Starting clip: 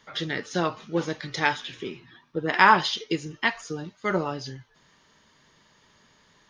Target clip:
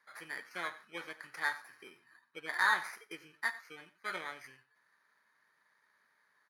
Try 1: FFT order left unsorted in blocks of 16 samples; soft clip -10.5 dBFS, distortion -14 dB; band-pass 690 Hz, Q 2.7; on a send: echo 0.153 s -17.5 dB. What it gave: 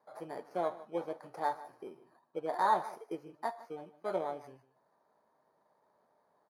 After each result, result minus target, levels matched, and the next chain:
500 Hz band +14.0 dB; echo 61 ms late
FFT order left unsorted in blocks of 16 samples; soft clip -10.5 dBFS, distortion -14 dB; band-pass 1800 Hz, Q 2.7; on a send: echo 0.153 s -17.5 dB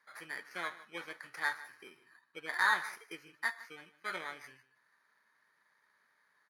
echo 61 ms late
FFT order left unsorted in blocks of 16 samples; soft clip -10.5 dBFS, distortion -14 dB; band-pass 1800 Hz, Q 2.7; on a send: echo 92 ms -17.5 dB

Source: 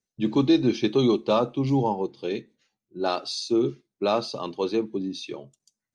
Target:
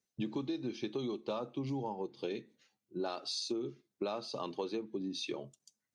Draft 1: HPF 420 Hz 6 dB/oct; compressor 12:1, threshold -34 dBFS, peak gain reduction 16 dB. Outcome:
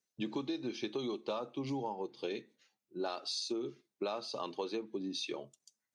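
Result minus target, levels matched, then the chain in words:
125 Hz band -4.0 dB
HPF 110 Hz 6 dB/oct; compressor 12:1, threshold -34 dBFS, peak gain reduction 19 dB

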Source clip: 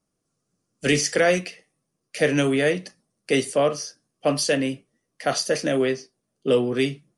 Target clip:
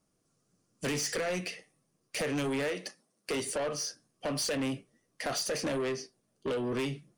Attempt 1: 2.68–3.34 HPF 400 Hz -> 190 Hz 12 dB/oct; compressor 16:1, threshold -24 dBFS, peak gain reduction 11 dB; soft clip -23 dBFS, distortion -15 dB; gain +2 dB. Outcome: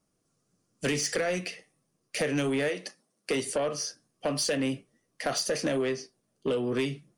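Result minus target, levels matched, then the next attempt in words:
soft clip: distortion -7 dB
2.68–3.34 HPF 400 Hz -> 190 Hz 12 dB/oct; compressor 16:1, threshold -24 dBFS, peak gain reduction 11 dB; soft clip -30.5 dBFS, distortion -8 dB; gain +2 dB

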